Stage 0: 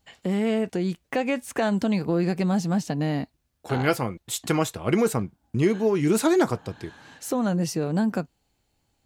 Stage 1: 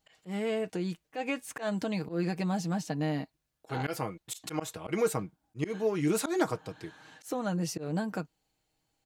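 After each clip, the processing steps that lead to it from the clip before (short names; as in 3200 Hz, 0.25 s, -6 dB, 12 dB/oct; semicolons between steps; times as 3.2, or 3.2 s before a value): low shelf 250 Hz -5.5 dB; comb 6.4 ms, depth 45%; auto swell 0.109 s; gain -5.5 dB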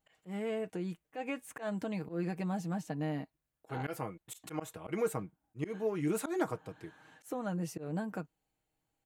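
bell 4800 Hz -9 dB 1.1 oct; gain -4.5 dB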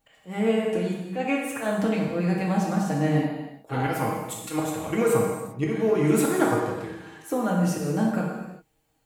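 non-linear reverb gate 0.42 s falling, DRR -2.5 dB; gain +8.5 dB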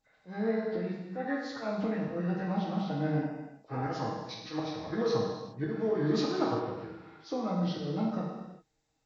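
nonlinear frequency compression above 1000 Hz 1.5:1; gain -7.5 dB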